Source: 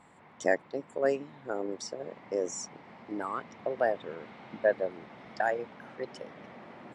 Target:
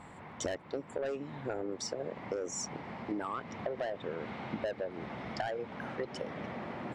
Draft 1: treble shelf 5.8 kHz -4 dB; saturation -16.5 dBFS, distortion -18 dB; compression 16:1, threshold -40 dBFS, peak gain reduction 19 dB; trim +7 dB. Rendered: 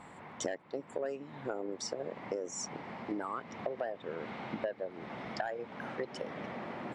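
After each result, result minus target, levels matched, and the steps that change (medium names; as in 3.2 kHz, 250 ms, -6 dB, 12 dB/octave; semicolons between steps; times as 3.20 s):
saturation: distortion -10 dB; 125 Hz band -3.0 dB
change: saturation -26.5 dBFS, distortion -8 dB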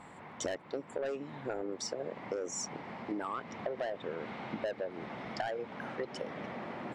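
125 Hz band -3.0 dB
add after compression: peaking EQ 63 Hz +8.5 dB 2 oct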